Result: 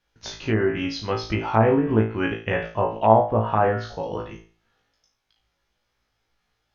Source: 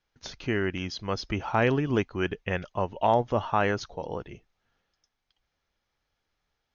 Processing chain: flutter echo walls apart 3.1 m, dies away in 0.38 s; low-pass that closes with the level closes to 1.2 kHz, closed at -19 dBFS; trim +3 dB

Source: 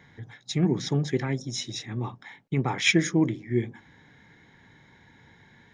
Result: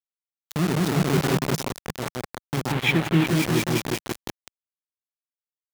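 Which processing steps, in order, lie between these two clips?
local Wiener filter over 25 samples; on a send: delay with an opening low-pass 179 ms, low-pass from 750 Hz, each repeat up 1 oct, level 0 dB; on the sum: bit crusher 4-bit; 0.98–1.69 s: waveshaping leveller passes 1; 2.72–3.27 s: resonant high shelf 4.1 kHz -8.5 dB, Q 1.5; high-pass 78 Hz 6 dB/octave; dynamic bell 160 Hz, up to +5 dB, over -35 dBFS, Q 4.3; trim -2 dB

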